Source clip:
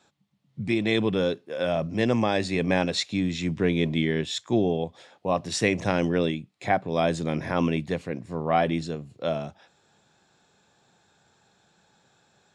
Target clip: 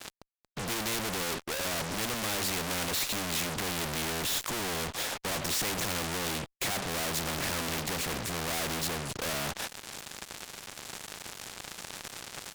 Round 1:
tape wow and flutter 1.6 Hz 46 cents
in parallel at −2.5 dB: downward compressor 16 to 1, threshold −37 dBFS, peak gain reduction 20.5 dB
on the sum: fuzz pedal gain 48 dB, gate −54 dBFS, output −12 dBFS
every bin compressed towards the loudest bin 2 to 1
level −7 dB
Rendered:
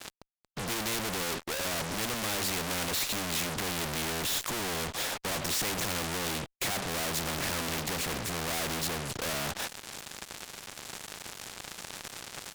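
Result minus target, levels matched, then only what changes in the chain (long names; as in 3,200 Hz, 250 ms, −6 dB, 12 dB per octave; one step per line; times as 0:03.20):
downward compressor: peak gain reduction −7.5 dB
change: downward compressor 16 to 1, threshold −45 dBFS, peak gain reduction 28 dB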